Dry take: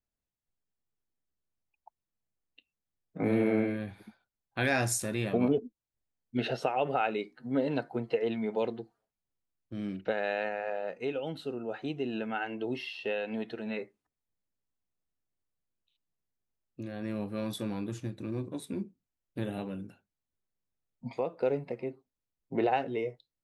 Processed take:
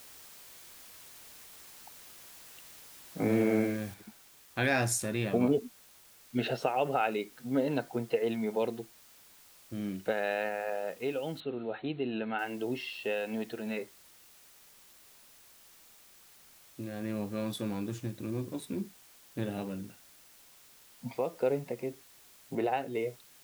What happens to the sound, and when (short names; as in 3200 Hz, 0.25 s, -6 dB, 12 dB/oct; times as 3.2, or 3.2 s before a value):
3.94 noise floor step -52 dB -58 dB
11.4–12.39 brick-wall FIR low-pass 4300 Hz
22.55–22.95 gain -3 dB